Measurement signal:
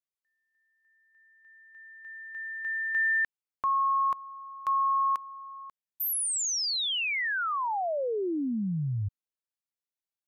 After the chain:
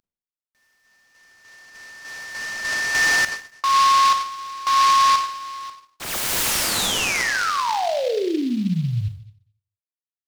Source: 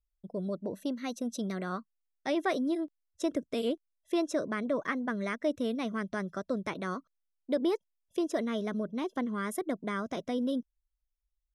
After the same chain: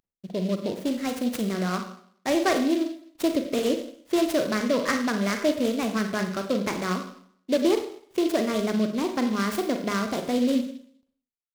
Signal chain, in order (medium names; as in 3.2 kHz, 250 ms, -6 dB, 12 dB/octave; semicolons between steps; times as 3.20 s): CVSD coder 64 kbps; Schroeder reverb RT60 0.61 s, combs from 33 ms, DRR 5 dB; delay time shaken by noise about 3.3 kHz, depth 0.046 ms; trim +6.5 dB